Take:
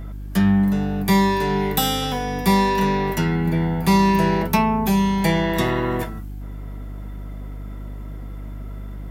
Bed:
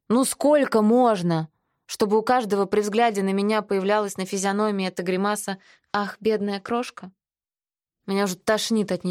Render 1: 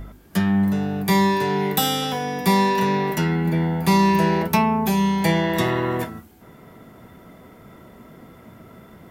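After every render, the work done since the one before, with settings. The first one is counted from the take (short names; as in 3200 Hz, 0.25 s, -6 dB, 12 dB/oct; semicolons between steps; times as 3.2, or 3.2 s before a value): de-hum 50 Hz, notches 6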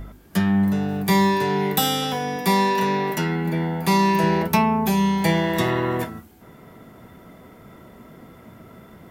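0.88–1.32 block floating point 7-bit; 2.36–4.24 HPF 180 Hz 6 dB/oct; 5.17–5.68 G.711 law mismatch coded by A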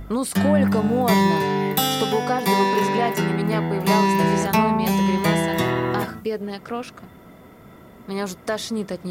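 add bed -4 dB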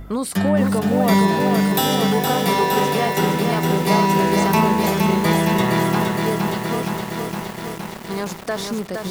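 lo-fi delay 0.465 s, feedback 80%, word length 6-bit, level -4 dB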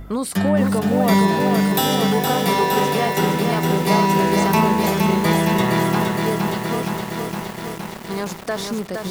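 nothing audible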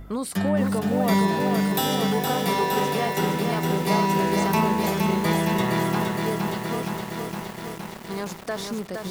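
gain -5 dB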